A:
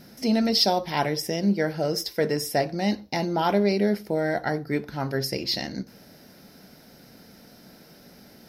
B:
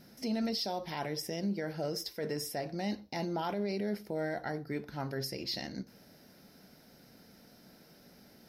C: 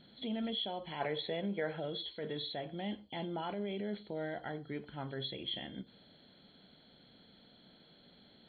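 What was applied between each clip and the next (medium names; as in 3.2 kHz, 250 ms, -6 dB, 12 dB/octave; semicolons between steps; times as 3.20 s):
peak limiter -18 dBFS, peak gain reduction 9 dB; trim -8 dB
knee-point frequency compression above 2.9 kHz 4:1; time-frequency box 1.00–1.79 s, 390–2700 Hz +7 dB; trim -4.5 dB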